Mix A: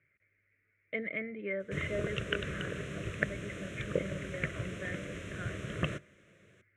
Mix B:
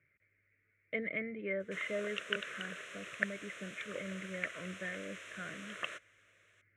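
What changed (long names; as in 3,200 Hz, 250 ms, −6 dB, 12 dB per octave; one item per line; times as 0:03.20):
background: add high-pass filter 890 Hz 12 dB per octave
reverb: off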